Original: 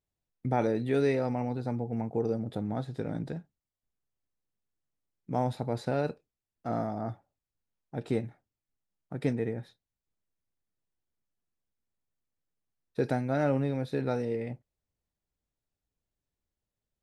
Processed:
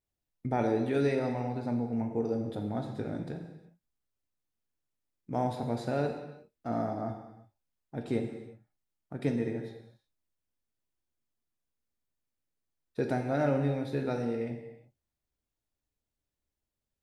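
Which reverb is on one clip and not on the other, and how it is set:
reverb whose tail is shaped and stops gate 390 ms falling, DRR 4 dB
level −2 dB

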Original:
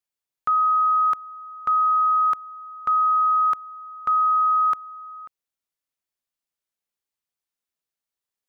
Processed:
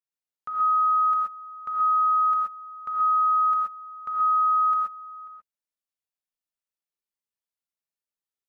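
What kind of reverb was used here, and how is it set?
reverb whose tail is shaped and stops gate 150 ms rising, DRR −2 dB
level −11.5 dB

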